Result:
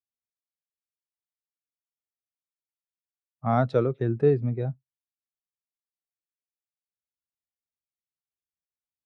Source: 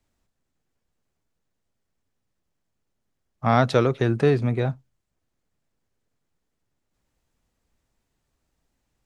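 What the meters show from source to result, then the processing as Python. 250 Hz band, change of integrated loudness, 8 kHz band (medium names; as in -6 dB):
-4.0 dB, -3.5 dB, no reading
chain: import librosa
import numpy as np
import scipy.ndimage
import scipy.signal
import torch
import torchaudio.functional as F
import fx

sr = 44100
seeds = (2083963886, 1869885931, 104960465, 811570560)

y = scipy.signal.sosfilt(scipy.signal.butter(2, 67.0, 'highpass', fs=sr, output='sos'), x)
y = fx.spectral_expand(y, sr, expansion=1.5)
y = y * 10.0 ** (-5.0 / 20.0)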